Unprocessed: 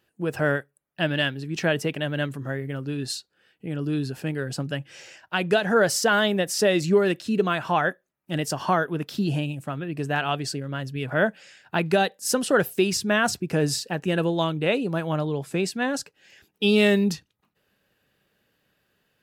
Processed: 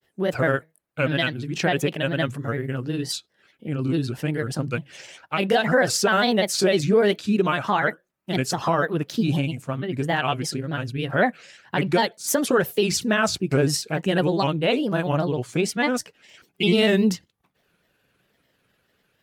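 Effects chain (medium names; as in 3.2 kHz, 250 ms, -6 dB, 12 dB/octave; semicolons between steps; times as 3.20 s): granulator, spray 16 ms, pitch spread up and down by 3 st; loudness maximiser +13 dB; trim -9 dB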